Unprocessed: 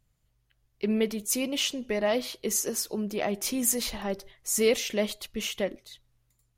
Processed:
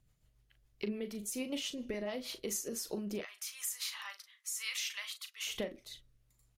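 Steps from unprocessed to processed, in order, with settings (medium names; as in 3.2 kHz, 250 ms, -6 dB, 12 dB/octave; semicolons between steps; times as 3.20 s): 3.21–5.47 s: Chebyshev high-pass 1.1 kHz, order 4; compression 10:1, threshold -35 dBFS, peak gain reduction 14.5 dB; rotary cabinet horn 7 Hz, later 1.1 Hz, at 1.96 s; doubling 39 ms -10 dB; trim +1.5 dB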